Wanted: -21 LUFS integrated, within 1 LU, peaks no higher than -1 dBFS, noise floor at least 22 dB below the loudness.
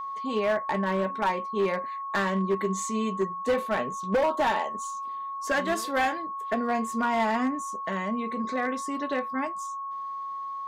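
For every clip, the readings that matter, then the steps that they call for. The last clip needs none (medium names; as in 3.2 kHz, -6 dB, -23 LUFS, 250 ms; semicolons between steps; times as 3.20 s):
clipped samples 1.8%; clipping level -19.5 dBFS; steady tone 1.1 kHz; tone level -32 dBFS; loudness -28.5 LUFS; peak level -19.5 dBFS; loudness target -21.0 LUFS
-> clip repair -19.5 dBFS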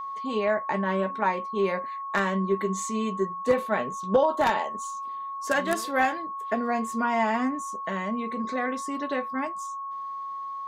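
clipped samples 0.0%; steady tone 1.1 kHz; tone level -32 dBFS
-> band-stop 1.1 kHz, Q 30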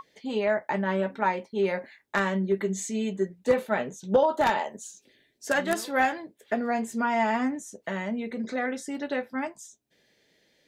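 steady tone not found; loudness -28.0 LUFS; peak level -9.5 dBFS; loudness target -21.0 LUFS
-> trim +7 dB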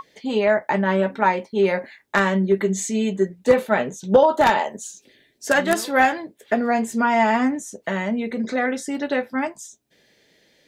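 loudness -21.0 LUFS; peak level -2.5 dBFS; noise floor -60 dBFS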